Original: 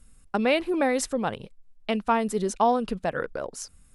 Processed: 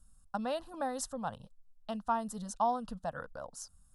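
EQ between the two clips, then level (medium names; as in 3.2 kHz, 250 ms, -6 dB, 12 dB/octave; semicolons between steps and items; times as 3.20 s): static phaser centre 930 Hz, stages 4; -7.0 dB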